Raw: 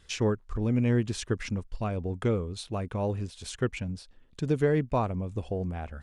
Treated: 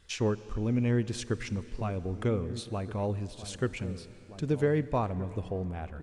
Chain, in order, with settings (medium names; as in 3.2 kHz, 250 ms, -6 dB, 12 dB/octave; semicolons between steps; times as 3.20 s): echo from a far wall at 270 m, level -13 dB; plate-style reverb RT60 3.9 s, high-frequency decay 0.95×, DRR 15 dB; trim -2 dB